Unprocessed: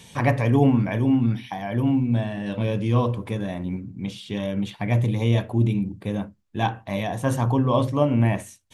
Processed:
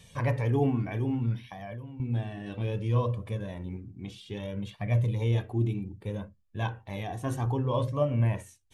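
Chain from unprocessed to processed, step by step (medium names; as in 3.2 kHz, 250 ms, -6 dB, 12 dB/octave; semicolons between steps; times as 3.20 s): bass shelf 150 Hz +8.5 dB; 1.43–2.00 s: compression 16:1, threshold -27 dBFS, peak gain reduction 14 dB; flange 0.62 Hz, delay 1.6 ms, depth 1.2 ms, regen +24%; trim -5.5 dB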